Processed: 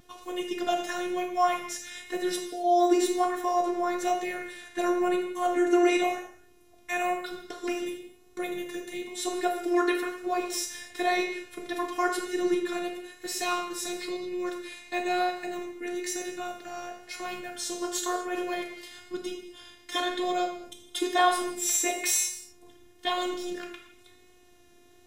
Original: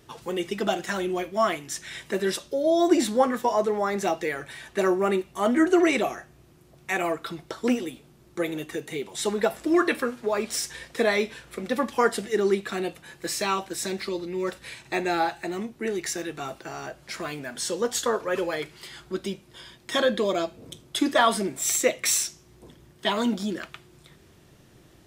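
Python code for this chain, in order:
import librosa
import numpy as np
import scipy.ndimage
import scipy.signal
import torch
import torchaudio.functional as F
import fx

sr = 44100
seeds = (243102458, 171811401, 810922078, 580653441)

y = fx.robotise(x, sr, hz=355.0)
y = fx.rev_gated(y, sr, seeds[0], gate_ms=290, shape='falling', drr_db=2.5)
y = fx.vibrato(y, sr, rate_hz=1.0, depth_cents=21.0)
y = F.gain(torch.from_numpy(y), -2.5).numpy()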